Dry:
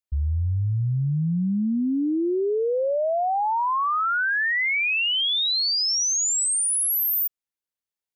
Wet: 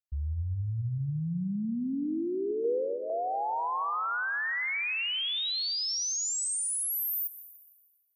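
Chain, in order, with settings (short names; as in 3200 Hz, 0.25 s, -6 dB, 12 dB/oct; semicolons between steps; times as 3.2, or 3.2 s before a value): 2.64–3.1 comb 2.5 ms, depth 94%; band-limited delay 0.238 s, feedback 52%, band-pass 520 Hz, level -8.5 dB; plate-style reverb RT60 1.5 s, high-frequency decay 0.95×, pre-delay 0.115 s, DRR 14 dB; gain -8.5 dB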